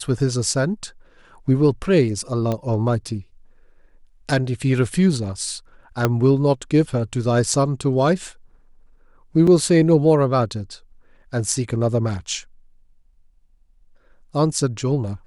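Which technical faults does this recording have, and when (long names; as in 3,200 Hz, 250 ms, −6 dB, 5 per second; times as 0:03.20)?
0:02.52: click −12 dBFS
0:06.05: click −4 dBFS
0:09.47: drop-out 4.3 ms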